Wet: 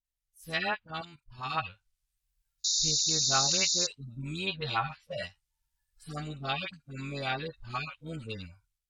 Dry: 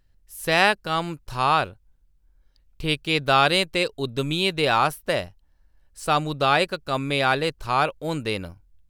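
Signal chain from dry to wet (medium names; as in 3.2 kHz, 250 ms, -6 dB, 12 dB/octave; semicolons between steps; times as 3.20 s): harmonic-percussive separation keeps harmonic; 4.59–5.23 s: doubling 15 ms -3 dB; word length cut 12-bit, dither triangular; 0.86–1.54 s: level held to a coarse grid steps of 14 dB; amplifier tone stack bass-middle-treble 5-5-5; AM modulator 92 Hz, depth 25%; phase dispersion highs, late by 47 ms, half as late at 840 Hz; level rider gain up to 9 dB; low-pass that closes with the level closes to 370 Hz, closed at -19.5 dBFS; 2.64–3.87 s: painted sound noise 3.6–7.2 kHz -28 dBFS; spectral noise reduction 15 dB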